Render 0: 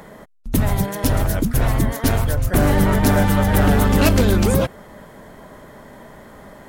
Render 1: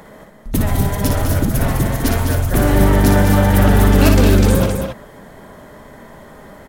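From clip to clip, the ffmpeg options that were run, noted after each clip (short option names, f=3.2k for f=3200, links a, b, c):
-af "aecho=1:1:58.31|204.1|265.3:0.562|0.447|0.398"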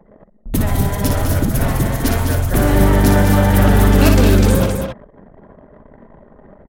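-af "anlmdn=3.98"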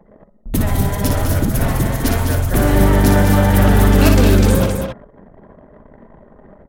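-af "bandreject=f=140.6:t=h:w=4,bandreject=f=281.2:t=h:w=4,bandreject=f=421.8:t=h:w=4,bandreject=f=562.4:t=h:w=4,bandreject=f=703:t=h:w=4,bandreject=f=843.6:t=h:w=4,bandreject=f=984.2:t=h:w=4,bandreject=f=1.1248k:t=h:w=4,bandreject=f=1.2654k:t=h:w=4,bandreject=f=1.406k:t=h:w=4,bandreject=f=1.5466k:t=h:w=4"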